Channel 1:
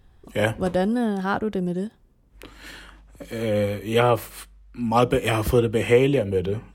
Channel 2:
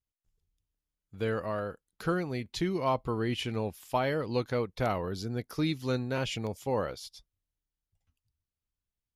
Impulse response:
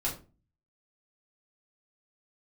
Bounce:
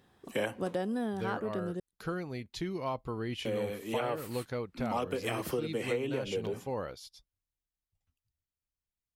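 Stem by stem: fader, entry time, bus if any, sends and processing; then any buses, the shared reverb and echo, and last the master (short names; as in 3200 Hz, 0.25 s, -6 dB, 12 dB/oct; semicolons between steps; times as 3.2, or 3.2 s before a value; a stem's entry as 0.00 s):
-1.0 dB, 0.00 s, muted 1.8–3.45, no send, HPF 190 Hz 12 dB/oct; auto duck -7 dB, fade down 0.85 s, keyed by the second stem
-5.0 dB, 0.00 s, no send, dry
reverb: off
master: compressor 6:1, threshold -29 dBFS, peak gain reduction 10.5 dB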